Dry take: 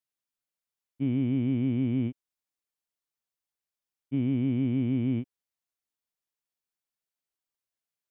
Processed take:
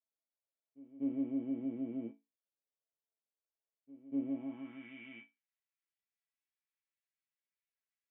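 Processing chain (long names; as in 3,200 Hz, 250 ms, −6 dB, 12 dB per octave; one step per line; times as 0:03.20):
resonators tuned to a chord A3 major, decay 0.21 s
backwards echo 245 ms −19.5 dB
band-pass filter sweep 490 Hz → 2,100 Hz, 0:04.25–0:04.93
level +16 dB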